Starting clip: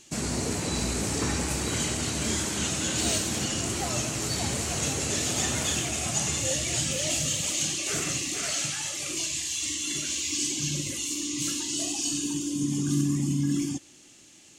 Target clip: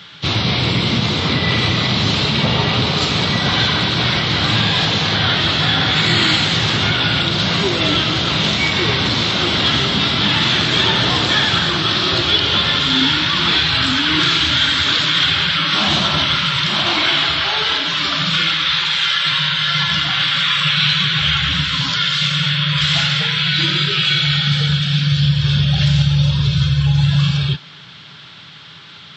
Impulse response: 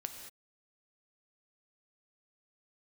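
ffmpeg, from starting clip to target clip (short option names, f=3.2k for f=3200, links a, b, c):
-filter_complex "[0:a]highpass=f=190:w=0.5412,highpass=f=190:w=1.3066,asplit=2[a][b];[b]alimiter=limit=-21.5dB:level=0:latency=1:release=120,volume=3dB[c];[a][c]amix=inputs=2:normalize=0,asetrate=22050,aresample=44100,volume=7dB"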